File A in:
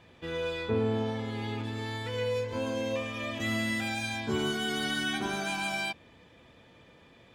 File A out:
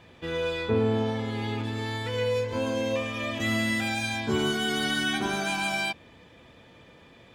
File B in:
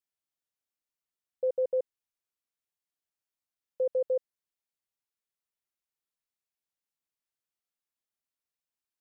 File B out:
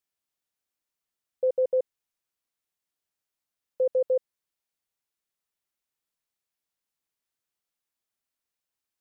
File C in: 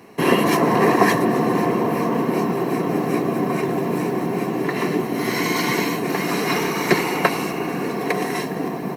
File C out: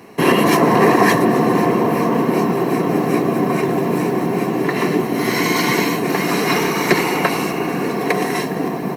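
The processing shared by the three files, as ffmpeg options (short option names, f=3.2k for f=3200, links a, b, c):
-af "alimiter=level_in=5dB:limit=-1dB:release=50:level=0:latency=1,volume=-1dB"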